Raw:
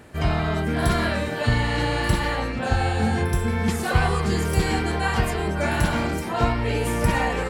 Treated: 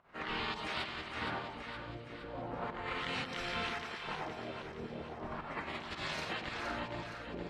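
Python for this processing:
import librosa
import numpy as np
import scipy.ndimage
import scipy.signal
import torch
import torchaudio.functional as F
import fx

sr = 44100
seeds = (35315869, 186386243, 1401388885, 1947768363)

p1 = fx.rattle_buzz(x, sr, strikes_db=-17.0, level_db=-15.0)
p2 = scipy.signal.sosfilt(scipy.signal.bessel(2, 12000.0, 'lowpass', norm='mag', fs=sr, output='sos'), p1)
p3 = scipy.signal.lfilter([1.0, -0.97], [1.0], p2)
p4 = fx.spec_gate(p3, sr, threshold_db=-10, keep='weak')
p5 = fx.high_shelf(p4, sr, hz=3000.0, db=-12.0)
p6 = fx.over_compress(p5, sr, threshold_db=-52.0, ratio=-0.5)
p7 = fx.filter_lfo_lowpass(p6, sr, shape='sine', hz=0.37, low_hz=450.0, high_hz=3800.0, q=1.4)
p8 = fx.volume_shaper(p7, sr, bpm=111, per_beat=1, depth_db=-12, release_ms=199.0, shape='fast start')
p9 = p8 + fx.echo_split(p8, sr, split_hz=990.0, low_ms=110, high_ms=467, feedback_pct=52, wet_db=-6, dry=0)
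y = F.gain(torch.from_numpy(p9), 12.0).numpy()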